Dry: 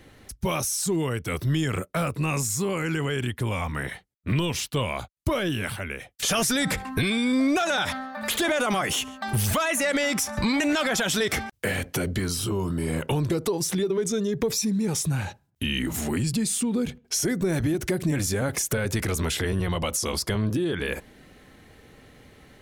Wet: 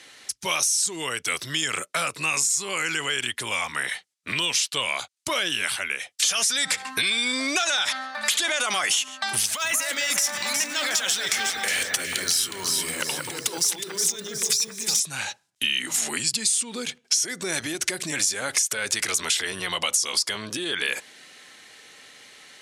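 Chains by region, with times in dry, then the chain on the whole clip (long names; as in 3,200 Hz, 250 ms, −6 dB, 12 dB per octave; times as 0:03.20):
0:09.46–0:15.00: compressor whose output falls as the input rises −30 dBFS + delay that swaps between a low-pass and a high-pass 182 ms, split 1,700 Hz, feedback 60%, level −2.5 dB + bad sample-rate conversion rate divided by 2×, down none, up zero stuff
whole clip: meter weighting curve ITU-R 468; downward compressor, threshold −22 dBFS; high-pass filter 83 Hz; level +2 dB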